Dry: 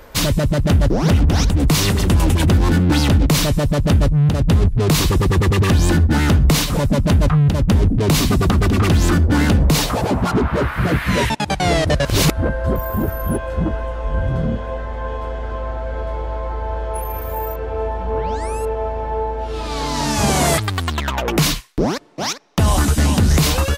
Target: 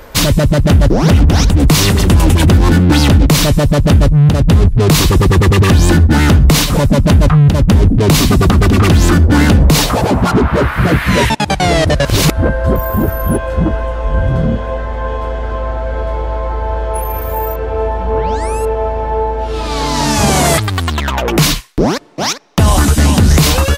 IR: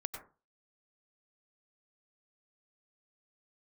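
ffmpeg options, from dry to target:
-af "alimiter=level_in=7.5dB:limit=-1dB:release=50:level=0:latency=1,volume=-1dB"

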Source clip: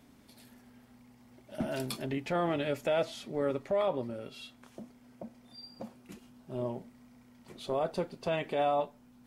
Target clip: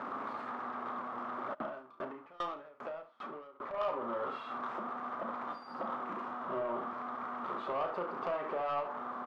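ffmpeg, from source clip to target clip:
ffmpeg -i in.wav -filter_complex "[0:a]aeval=exprs='val(0)+0.5*0.0178*sgn(val(0))':channel_layout=same,highpass=360,acompressor=threshold=-35dB:ratio=5,lowpass=frequency=1200:width_type=q:width=6.2,asoftclip=type=tanh:threshold=-28.5dB,aecho=1:1:34|71:0.398|0.316,asplit=3[link_01][link_02][link_03];[link_01]afade=type=out:start_time=1.53:duration=0.02[link_04];[link_02]aeval=exprs='val(0)*pow(10,-26*if(lt(mod(2.5*n/s,1),2*abs(2.5)/1000),1-mod(2.5*n/s,1)/(2*abs(2.5)/1000),(mod(2.5*n/s,1)-2*abs(2.5)/1000)/(1-2*abs(2.5)/1000))/20)':channel_layout=same,afade=type=in:start_time=1.53:duration=0.02,afade=type=out:start_time=3.73:duration=0.02[link_05];[link_03]afade=type=in:start_time=3.73:duration=0.02[link_06];[link_04][link_05][link_06]amix=inputs=3:normalize=0" out.wav

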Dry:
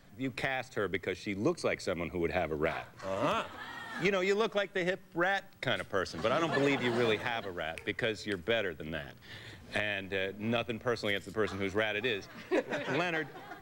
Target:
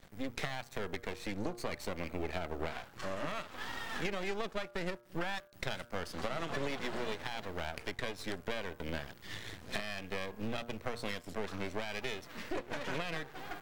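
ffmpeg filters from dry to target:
ffmpeg -i in.wav -af "acompressor=threshold=-39dB:ratio=4,aeval=exprs='max(val(0),0)':channel_layout=same,bandreject=frequency=118.1:width_type=h:width=4,bandreject=frequency=236.2:width_type=h:width=4,bandreject=frequency=354.3:width_type=h:width=4,bandreject=frequency=472.4:width_type=h:width=4,bandreject=frequency=590.5:width_type=h:width=4,bandreject=frequency=708.6:width_type=h:width=4,bandreject=frequency=826.7:width_type=h:width=4,bandreject=frequency=944.8:width_type=h:width=4,bandreject=frequency=1062.9:width_type=h:width=4,bandreject=frequency=1181:width_type=h:width=4,bandreject=frequency=1299.1:width_type=h:width=4,bandreject=frequency=1417.2:width_type=h:width=4,bandreject=frequency=1535.3:width_type=h:width=4,bandreject=frequency=1653.4:width_type=h:width=4,volume=7dB" out.wav

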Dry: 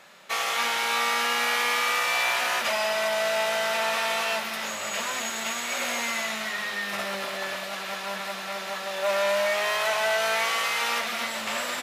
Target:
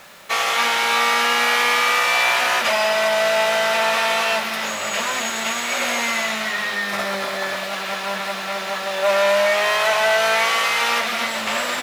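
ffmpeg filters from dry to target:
ffmpeg -i in.wav -filter_complex "[0:a]highshelf=frequency=7100:gain=-5,acrusher=bits=8:mix=0:aa=0.000001,asettb=1/sr,asplit=3[link_01][link_02][link_03];[link_01]atrim=end=6.764[link_04];[link_02]atrim=start=6.76:end=7.58,asetpts=PTS-STARTPTS,afade=type=in:duration=0.004:curve=qsin,afade=type=out:start_time=0.816:duration=0.004:curve=qsin,equalizer=frequency=2800:width=7.4:gain=-6.5[link_05];[link_03]atrim=start=7.576[link_06];[link_04][link_05]acrossfade=duration=0.004:curve1=hsin:curve2=qsin[link_07];[link_07][link_06]acrossfade=duration=0.004:curve1=qsin:curve2=hsin,volume=7.5dB" out.wav

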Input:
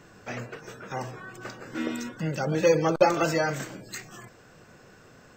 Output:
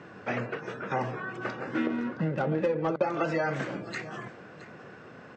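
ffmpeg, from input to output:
ffmpeg -i in.wav -filter_complex "[0:a]acompressor=threshold=-30dB:ratio=8,highpass=130,lowpass=2700,asettb=1/sr,asplit=3[link_01][link_02][link_03];[link_01]atrim=end=1.864[link_04];[link_02]atrim=start=1.86:end=2.88,asetpts=PTS-STARTPTS,afade=type=in:duration=0.004:curve=qsin,afade=type=out:start_time=1.016:duration=0.004:curve=qsin,adynamicsmooth=sensitivity=4.5:basefreq=1500[link_05];[link_03]atrim=start=2.876[link_06];[link_04][link_05]acrossfade=duration=0.004:curve1=hsin:curve2=qsin[link_07];[link_07][link_06]acrossfade=duration=0.004:curve1=qsin:curve2=hsin,aecho=1:1:667:0.141,volume=6dB" out.wav

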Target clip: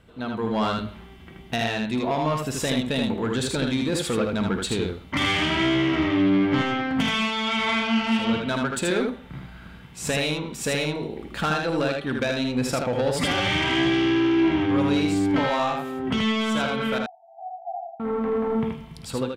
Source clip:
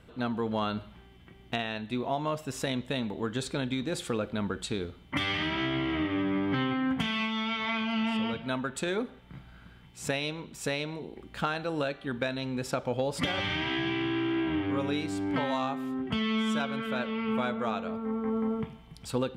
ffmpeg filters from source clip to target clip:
ffmpeg -i in.wav -filter_complex "[0:a]dynaudnorm=framelen=130:gausssize=7:maxgain=8dB,asoftclip=type=tanh:threshold=-18.5dB,asettb=1/sr,asplit=3[link_01][link_02][link_03];[link_01]atrim=end=16.984[link_04];[link_02]atrim=start=16.98:end=18,asetpts=PTS-STARTPTS,afade=type=in:duration=0.004:curve=qsin,afade=type=out:start_time=1.016:duration=0.004:curve=qsin,asuperpass=centerf=740:order=12:qfactor=4.9[link_05];[link_03]atrim=start=17.996[link_06];[link_04][link_05]acrossfade=duration=0.004:curve1=hsin:curve2=qsin[link_07];[link_07][link_06]acrossfade=duration=0.004:curve1=qsin:curve2=hsin,aecho=1:1:52|79:0.266|0.668" out.wav

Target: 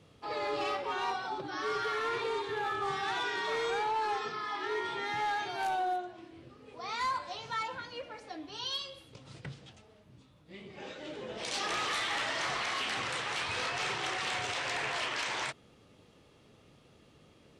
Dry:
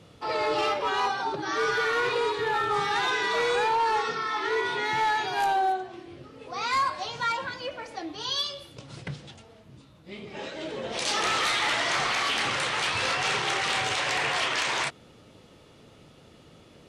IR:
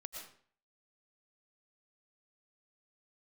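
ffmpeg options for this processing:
-af "asetrate=42336,aresample=44100,volume=-7.5dB"

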